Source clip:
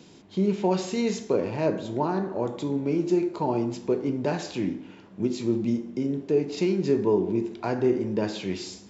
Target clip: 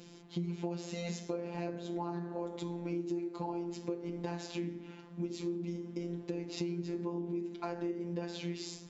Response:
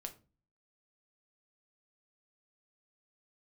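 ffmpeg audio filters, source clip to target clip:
-af "afftfilt=real='hypot(re,im)*cos(PI*b)':imag='0':win_size=1024:overlap=0.75,acompressor=threshold=-34dB:ratio=6"

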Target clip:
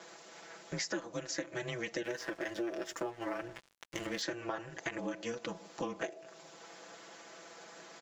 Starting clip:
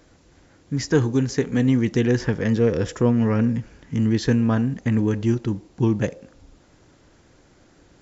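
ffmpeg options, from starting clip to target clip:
-filter_complex "[0:a]highpass=f=460:w=0.5412,highpass=f=460:w=1.3066,aeval=exprs='val(0)*sin(2*PI*120*n/s)':c=same,aecho=1:1:6:0.74,asettb=1/sr,asplit=3[a][b][c];[a]atrim=end=2.044[d];[b]atrim=start=2.04:end=4.22,asetpts=PTS-STARTPTS,afade=t=in:d=0.004:c=qsin,afade=t=out:st=2.176:d=0.004:c=qsin,aeval=exprs='sgn(val(0))*max(abs(val(0))-0.00398,0)':c=same[e];[c]atrim=start=4.216[f];[d][e]acrossfade=d=0.004:c1=hsin:c2=qsin[g];[g][f]acrossfade=d=0.004:c1=qsin:c2=hsin,acompressor=threshold=-44dB:ratio=8,volume=8.5dB"

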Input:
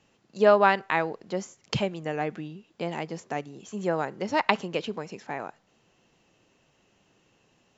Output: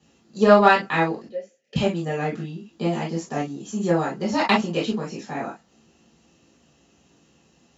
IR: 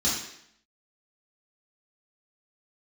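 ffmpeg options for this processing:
-filter_complex "[0:a]asettb=1/sr,asplit=3[a][b][c];[a]atrim=end=1.264[d];[b]atrim=start=1.26:end=1.76,asetpts=PTS-STARTPTS,afade=t=in:d=0.004:c=qsin,afade=t=out:st=0.496:d=0.004:c=qsin,asplit=3[e][f][g];[e]bandpass=f=530:t=q:w=8,volume=0dB[h];[f]bandpass=f=1.84k:t=q:w=8,volume=-6dB[i];[g]bandpass=f=2.48k:t=q:w=8,volume=-9dB[j];[h][i][j]amix=inputs=3:normalize=0[k];[c]atrim=start=1.756[l];[d][k]acrossfade=d=0.004:c1=hsin:c2=qsin[m];[m][l]acrossfade=d=0.004:c1=qsin:c2=hsin[n];[1:a]atrim=start_sample=2205,atrim=end_sample=3087[o];[n][o]afir=irnorm=-1:irlink=0,aeval=exprs='1.5*(cos(1*acos(clip(val(0)/1.5,-1,1)))-cos(1*PI/2))+0.0335*(cos(7*acos(clip(val(0)/1.5,-1,1)))-cos(7*PI/2))':c=same,volume=-4.5dB"

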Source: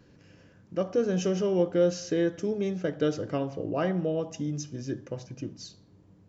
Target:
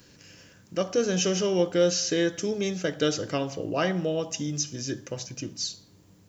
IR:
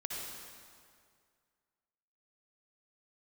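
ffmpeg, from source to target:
-filter_complex "[0:a]crystalizer=i=7.5:c=0,acrossover=split=5600[a][b];[b]acompressor=threshold=-36dB:ratio=4:attack=1:release=60[c];[a][c]amix=inputs=2:normalize=0"

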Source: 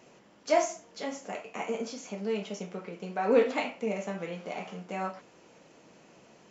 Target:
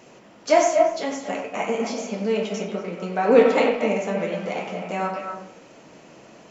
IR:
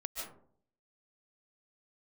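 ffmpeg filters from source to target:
-filter_complex "[0:a]asplit=2[a][b];[1:a]atrim=start_sample=2205,lowpass=3.2k,adelay=92[c];[b][c]afir=irnorm=-1:irlink=0,volume=-3dB[d];[a][d]amix=inputs=2:normalize=0,volume=7.5dB"

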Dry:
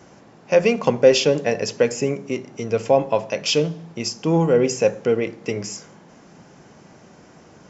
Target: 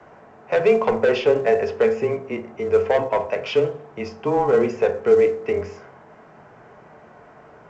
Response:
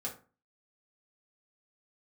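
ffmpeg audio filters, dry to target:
-filter_complex "[0:a]lowpass=3.3k,acrossover=split=470 2200:gain=0.2 1 0.158[a][b][c];[a][b][c]amix=inputs=3:normalize=0,asoftclip=type=tanh:threshold=-15.5dB,afreqshift=-19,asplit=2[d][e];[1:a]atrim=start_sample=2205,asetrate=38808,aresample=44100,lowshelf=f=120:g=10.5[f];[e][f]afir=irnorm=-1:irlink=0,volume=-4.5dB[g];[d][g]amix=inputs=2:normalize=0,volume=2.5dB" -ar 16000 -c:a pcm_alaw

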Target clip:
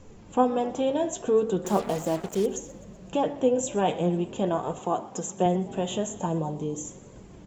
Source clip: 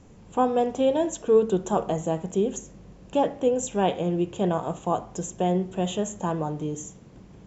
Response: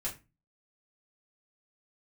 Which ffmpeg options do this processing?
-filter_complex "[0:a]asplit=2[a][b];[b]acompressor=threshold=-30dB:ratio=6,volume=-1dB[c];[a][c]amix=inputs=2:normalize=0,asettb=1/sr,asplit=3[d][e][f];[d]atrim=end=6.264[g];[e]atrim=start=6.26:end=6.85,asetpts=PTS-STARTPTS,afade=t=in:d=0.004:c=qsin,afade=t=out:st=0.586:d=0.004:c=qsin,equalizer=f=1.4k:t=o:w=1.1:g=-11[h];[f]atrim=start=6.846[i];[g][h]acrossfade=d=0.004:c1=hsin:c2=qsin[j];[j][i]acrossfade=d=0.004:c1=qsin:c2=hsin,asplit=2[k][l];[1:a]atrim=start_sample=2205[m];[l][m]afir=irnorm=-1:irlink=0,volume=-18dB[n];[k][n]amix=inputs=2:normalize=0,flanger=delay=1.8:depth=6.5:regen=50:speed=0.42:shape=triangular,asettb=1/sr,asplit=3[o][p][q];[o]atrim=end=1.644[r];[p]atrim=start=1.64:end=2.46,asetpts=PTS-STARTPTS,afade=t=in:d=0.004:c=qsin,afade=t=out:st=0.816:d=0.004:c=qsin,acrusher=bits=5:mix=0:aa=0.5[s];[q]atrim=start=2.456[t];[r][s]acrossfade=d=0.004:c1=hsin:c2=qsin[u];[u][t]acrossfade=d=0.004:c1=qsin:c2=hsin,asettb=1/sr,asplit=3[v][w][x];[v]atrim=end=4.794[y];[w]atrim=start=4.79:end=5.46,asetpts=PTS-STARTPTS,afade=t=in:d=0.004:c=qsin,afade=t=out:st=0.666:d=0.004:c=qsin,highpass=140[z];[x]atrim=start=5.456[aa];[y][z]acrossfade=d=0.004:c1=hsin:c2=qsin[ab];[ab][aa]acrossfade=d=0.004:c1=qsin:c2=hsin,asplit=6[ac][ad][ae][af][ag][ah];[ad]adelay=125,afreqshift=44,volume=-20dB[ai];[ae]adelay=250,afreqshift=88,volume=-24.6dB[aj];[af]adelay=375,afreqshift=132,volume=-29.2dB[ak];[ag]adelay=500,afreqshift=176,volume=-33.7dB[al];[ah]adelay=625,afreqshift=220,volume=-38.3dB[am];[ac][ai][aj][ak][al][am]amix=inputs=6:normalize=0"

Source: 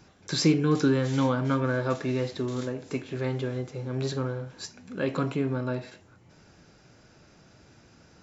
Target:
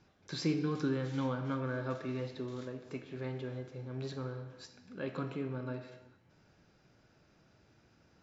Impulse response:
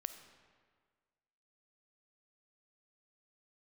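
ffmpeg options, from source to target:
-filter_complex "[0:a]lowpass=5.3k[a];[1:a]atrim=start_sample=2205,afade=t=out:st=0.41:d=0.01,atrim=end_sample=18522[b];[a][b]afir=irnorm=-1:irlink=0,volume=-7.5dB"

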